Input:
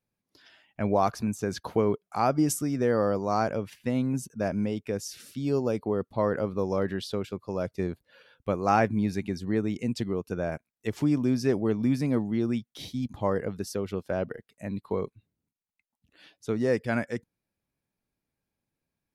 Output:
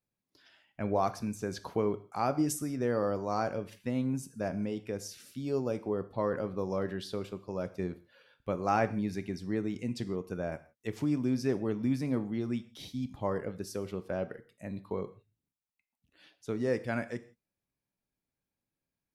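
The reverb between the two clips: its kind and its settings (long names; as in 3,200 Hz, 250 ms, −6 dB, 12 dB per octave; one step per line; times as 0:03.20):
reverb whose tail is shaped and stops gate 190 ms falling, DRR 11 dB
level −5.5 dB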